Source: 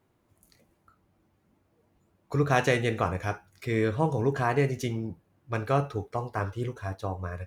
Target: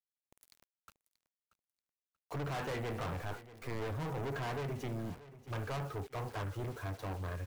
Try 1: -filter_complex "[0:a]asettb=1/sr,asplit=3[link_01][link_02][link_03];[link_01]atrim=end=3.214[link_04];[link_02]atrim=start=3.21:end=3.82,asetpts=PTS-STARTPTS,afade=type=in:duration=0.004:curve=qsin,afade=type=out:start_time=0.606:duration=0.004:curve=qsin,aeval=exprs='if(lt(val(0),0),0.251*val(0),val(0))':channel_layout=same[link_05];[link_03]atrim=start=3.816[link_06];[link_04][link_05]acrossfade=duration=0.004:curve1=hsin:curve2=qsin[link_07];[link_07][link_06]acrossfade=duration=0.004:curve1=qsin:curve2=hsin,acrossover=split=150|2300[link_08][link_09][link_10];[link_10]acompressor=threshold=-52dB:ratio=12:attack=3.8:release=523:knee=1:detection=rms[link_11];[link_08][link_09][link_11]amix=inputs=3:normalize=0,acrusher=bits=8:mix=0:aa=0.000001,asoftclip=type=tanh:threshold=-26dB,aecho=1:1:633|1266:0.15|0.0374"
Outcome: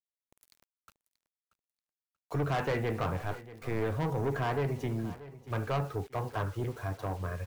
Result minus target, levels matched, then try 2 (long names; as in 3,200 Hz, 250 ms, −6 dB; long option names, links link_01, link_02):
soft clipping: distortion −5 dB
-filter_complex "[0:a]asettb=1/sr,asplit=3[link_01][link_02][link_03];[link_01]atrim=end=3.214[link_04];[link_02]atrim=start=3.21:end=3.82,asetpts=PTS-STARTPTS,afade=type=in:duration=0.004:curve=qsin,afade=type=out:start_time=0.606:duration=0.004:curve=qsin,aeval=exprs='if(lt(val(0),0),0.251*val(0),val(0))':channel_layout=same[link_05];[link_03]atrim=start=3.816[link_06];[link_04][link_05]acrossfade=duration=0.004:curve1=hsin:curve2=qsin[link_07];[link_07][link_06]acrossfade=duration=0.004:curve1=qsin:curve2=hsin,acrossover=split=150|2300[link_08][link_09][link_10];[link_10]acompressor=threshold=-52dB:ratio=12:attack=3.8:release=523:knee=1:detection=rms[link_11];[link_08][link_09][link_11]amix=inputs=3:normalize=0,acrusher=bits=8:mix=0:aa=0.000001,asoftclip=type=tanh:threshold=-36dB,aecho=1:1:633|1266:0.15|0.0374"